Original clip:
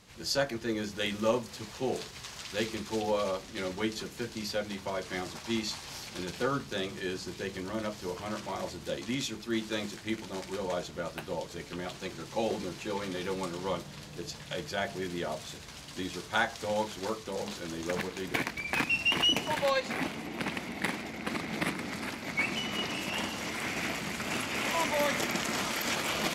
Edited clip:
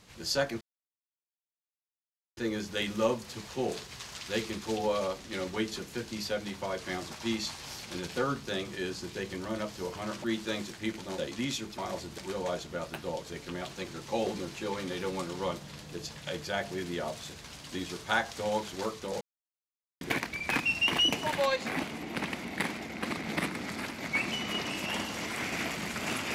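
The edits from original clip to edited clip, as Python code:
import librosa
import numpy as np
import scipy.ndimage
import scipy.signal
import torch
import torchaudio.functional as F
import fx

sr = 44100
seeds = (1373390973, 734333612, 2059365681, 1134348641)

y = fx.edit(x, sr, fx.insert_silence(at_s=0.61, length_s=1.76),
    fx.swap(start_s=8.48, length_s=0.4, other_s=9.48, other_length_s=0.94),
    fx.silence(start_s=17.45, length_s=0.8), tone=tone)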